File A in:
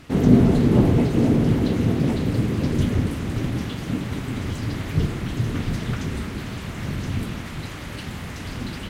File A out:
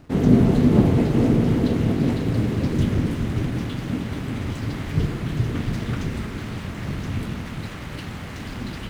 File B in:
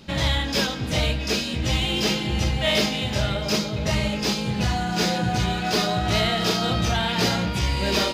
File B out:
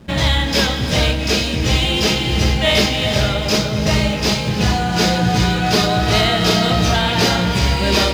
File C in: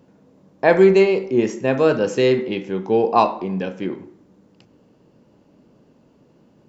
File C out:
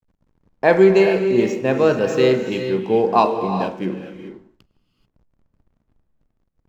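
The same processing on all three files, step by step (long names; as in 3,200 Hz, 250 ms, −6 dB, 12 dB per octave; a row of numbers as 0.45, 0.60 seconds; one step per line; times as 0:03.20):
slack as between gear wheels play −41 dBFS
reverb whose tail is shaped and stops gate 460 ms rising, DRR 7 dB
normalise the peak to −2 dBFS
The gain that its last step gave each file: −1.0, +6.5, 0.0 decibels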